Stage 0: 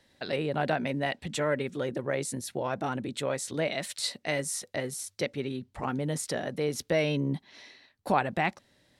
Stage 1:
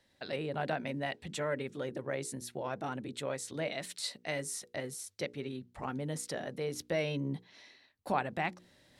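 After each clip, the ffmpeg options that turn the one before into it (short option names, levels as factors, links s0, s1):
-af "bandreject=f=60:t=h:w=6,bandreject=f=120:t=h:w=6,bandreject=f=180:t=h:w=6,bandreject=f=240:t=h:w=6,bandreject=f=300:t=h:w=6,bandreject=f=360:t=h:w=6,bandreject=f=420:t=h:w=6,bandreject=f=480:t=h:w=6,areverse,acompressor=mode=upward:threshold=0.00355:ratio=2.5,areverse,volume=0.501"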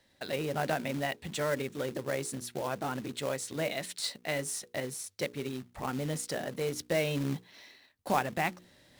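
-af "acrusher=bits=3:mode=log:mix=0:aa=0.000001,volume=1.41"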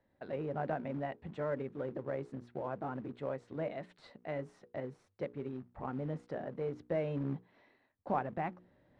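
-af "lowpass=1200,volume=0.631"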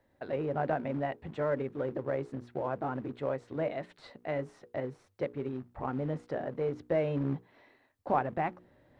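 -af "equalizer=f=190:w=4.1:g=-7,volume=1.88"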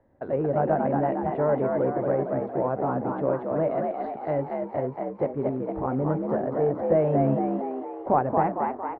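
-filter_complex "[0:a]lowpass=1100,asplit=2[s0][s1];[s1]asplit=7[s2][s3][s4][s5][s6][s7][s8];[s2]adelay=229,afreqshift=61,volume=0.631[s9];[s3]adelay=458,afreqshift=122,volume=0.347[s10];[s4]adelay=687,afreqshift=183,volume=0.191[s11];[s5]adelay=916,afreqshift=244,volume=0.105[s12];[s6]adelay=1145,afreqshift=305,volume=0.0575[s13];[s7]adelay=1374,afreqshift=366,volume=0.0316[s14];[s8]adelay=1603,afreqshift=427,volume=0.0174[s15];[s9][s10][s11][s12][s13][s14][s15]amix=inputs=7:normalize=0[s16];[s0][s16]amix=inputs=2:normalize=0,volume=2.37"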